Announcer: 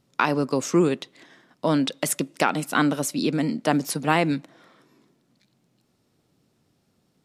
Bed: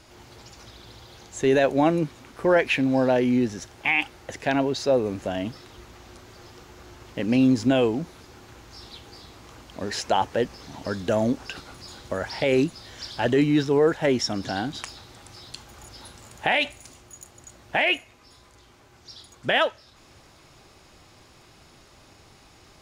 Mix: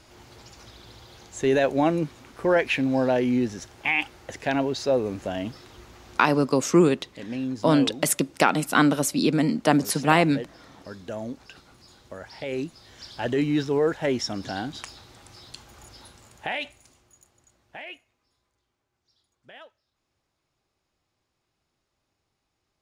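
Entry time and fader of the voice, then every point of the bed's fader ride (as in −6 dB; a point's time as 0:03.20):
6.00 s, +2.0 dB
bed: 0:06.17 −1.5 dB
0:06.54 −11 dB
0:12.29 −11 dB
0:13.51 −3 dB
0:15.89 −3 dB
0:18.85 −25.5 dB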